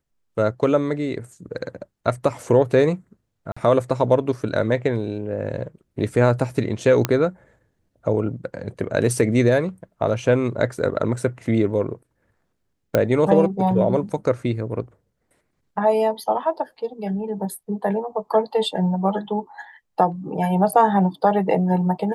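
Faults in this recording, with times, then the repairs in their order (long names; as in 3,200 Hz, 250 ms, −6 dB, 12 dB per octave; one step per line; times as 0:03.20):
0:03.52–0:03.56: drop-out 45 ms
0:07.05: click −5 dBFS
0:12.95: click −6 dBFS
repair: click removal
repair the gap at 0:03.52, 45 ms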